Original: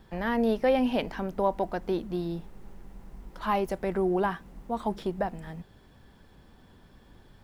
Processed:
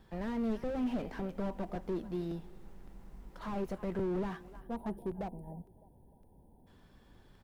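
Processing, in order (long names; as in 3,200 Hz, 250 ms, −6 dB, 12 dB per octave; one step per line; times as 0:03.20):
gain on a spectral selection 0:04.60–0:06.67, 1,000–8,600 Hz −28 dB
on a send: repeating echo 304 ms, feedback 41%, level −23.5 dB
on the sum: regular buffer underruns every 0.56 s, samples 128, repeat, from 0:00.63
slew-rate limiting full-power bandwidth 17 Hz
level −5.5 dB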